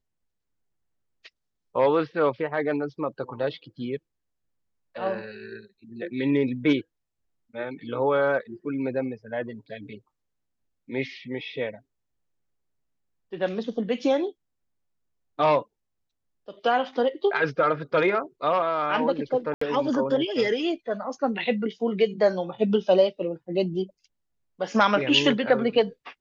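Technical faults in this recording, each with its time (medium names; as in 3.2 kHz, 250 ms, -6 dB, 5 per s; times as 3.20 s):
19.54–19.61 s: dropout 74 ms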